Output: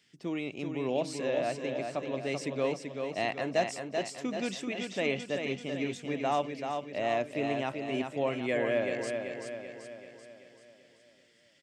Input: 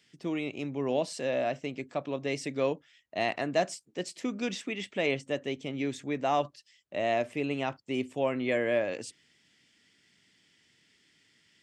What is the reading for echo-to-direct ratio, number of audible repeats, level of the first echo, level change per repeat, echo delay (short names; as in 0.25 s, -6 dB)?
-4.0 dB, 6, -5.5 dB, -5.5 dB, 0.385 s